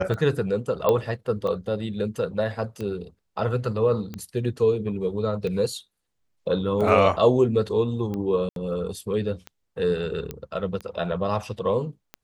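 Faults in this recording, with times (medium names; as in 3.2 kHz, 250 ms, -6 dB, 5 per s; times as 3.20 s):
tick 45 rpm -20 dBFS
0.89 s: pop -9 dBFS
8.49–8.56 s: dropout 72 ms
10.31 s: pop -17 dBFS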